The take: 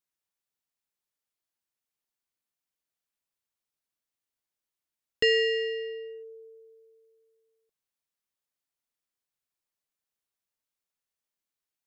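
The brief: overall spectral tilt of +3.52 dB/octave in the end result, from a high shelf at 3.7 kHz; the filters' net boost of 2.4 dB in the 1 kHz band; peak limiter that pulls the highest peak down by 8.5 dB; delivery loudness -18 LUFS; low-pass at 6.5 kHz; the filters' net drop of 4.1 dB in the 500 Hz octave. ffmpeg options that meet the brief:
-af "lowpass=6500,equalizer=f=500:t=o:g=-5.5,equalizer=f=1000:t=o:g=6.5,highshelf=f=3700:g=-7,volume=5.31,alimiter=limit=0.282:level=0:latency=1"

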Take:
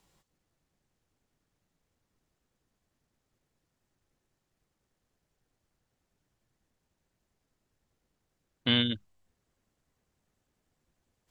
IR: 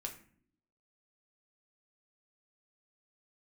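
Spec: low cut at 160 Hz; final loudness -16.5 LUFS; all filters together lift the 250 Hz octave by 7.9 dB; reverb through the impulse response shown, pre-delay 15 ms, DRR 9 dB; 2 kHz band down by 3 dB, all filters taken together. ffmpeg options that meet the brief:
-filter_complex "[0:a]highpass=160,equalizer=f=250:t=o:g=9,equalizer=f=2000:t=o:g=-4,asplit=2[s0][s1];[1:a]atrim=start_sample=2205,adelay=15[s2];[s1][s2]afir=irnorm=-1:irlink=0,volume=0.422[s3];[s0][s3]amix=inputs=2:normalize=0,volume=2.99"

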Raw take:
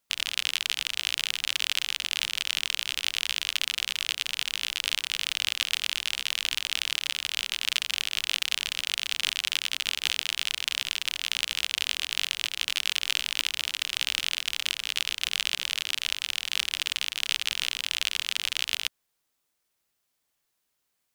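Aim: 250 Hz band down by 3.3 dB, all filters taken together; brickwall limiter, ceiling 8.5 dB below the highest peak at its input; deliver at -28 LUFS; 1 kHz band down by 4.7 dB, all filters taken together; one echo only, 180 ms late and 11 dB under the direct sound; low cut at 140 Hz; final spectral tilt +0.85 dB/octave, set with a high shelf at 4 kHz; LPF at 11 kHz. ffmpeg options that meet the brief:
-af "highpass=140,lowpass=11000,equalizer=f=250:t=o:g=-3.5,equalizer=f=1000:t=o:g=-6,highshelf=f=4000:g=-3,alimiter=limit=0.158:level=0:latency=1,aecho=1:1:180:0.282,volume=1.88"

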